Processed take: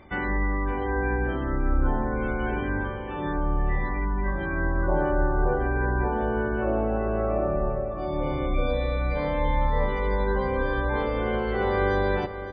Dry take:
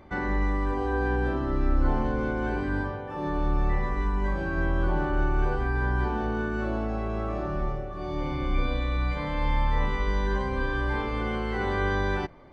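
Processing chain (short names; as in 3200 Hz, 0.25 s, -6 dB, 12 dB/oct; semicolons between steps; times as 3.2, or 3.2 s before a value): spectral gate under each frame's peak -30 dB strong; bell 2800 Hz +9.5 dB 0.88 oct, from 4.88 s 550 Hz; feedback echo 0.563 s, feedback 31%, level -12 dB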